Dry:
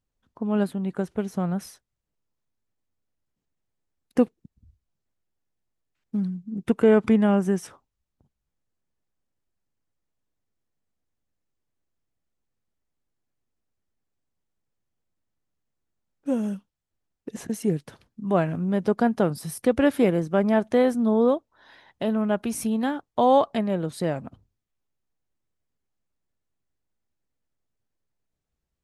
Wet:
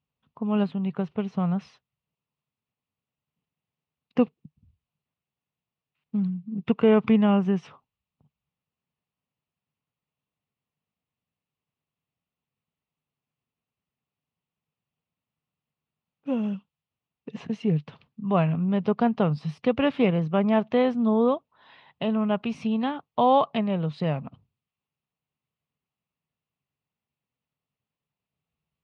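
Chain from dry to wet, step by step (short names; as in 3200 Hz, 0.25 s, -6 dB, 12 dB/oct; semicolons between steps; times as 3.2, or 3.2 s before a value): speaker cabinet 100–4000 Hz, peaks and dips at 150 Hz +7 dB, 330 Hz -9 dB, 560 Hz -3 dB, 1100 Hz +4 dB, 1600 Hz -7 dB, 2700 Hz +7 dB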